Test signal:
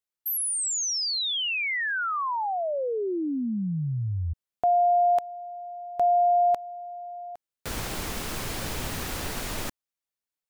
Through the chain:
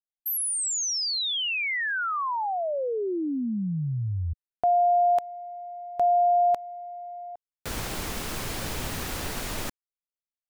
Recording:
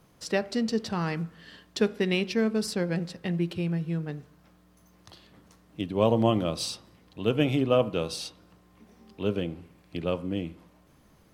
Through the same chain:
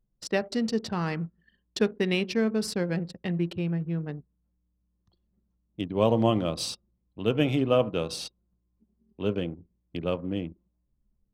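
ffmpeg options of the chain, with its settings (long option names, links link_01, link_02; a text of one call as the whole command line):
ffmpeg -i in.wav -af "anlmdn=0.631" out.wav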